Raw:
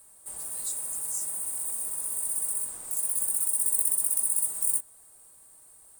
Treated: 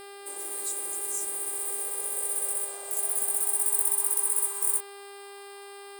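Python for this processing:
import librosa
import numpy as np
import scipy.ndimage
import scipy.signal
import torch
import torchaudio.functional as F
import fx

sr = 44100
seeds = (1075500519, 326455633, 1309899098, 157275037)

y = fx.filter_sweep_highpass(x, sr, from_hz=360.0, to_hz=1000.0, start_s=1.36, end_s=4.32, q=4.3)
y = fx.dmg_buzz(y, sr, base_hz=400.0, harmonics=13, level_db=-45.0, tilt_db=-5, odd_only=False)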